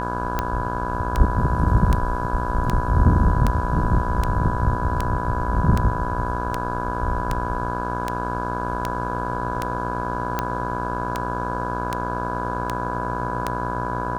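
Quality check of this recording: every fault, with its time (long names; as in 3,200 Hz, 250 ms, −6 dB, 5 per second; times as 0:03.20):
mains buzz 60 Hz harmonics 28 −28 dBFS
scratch tick 78 rpm −8 dBFS
whistle 990 Hz −27 dBFS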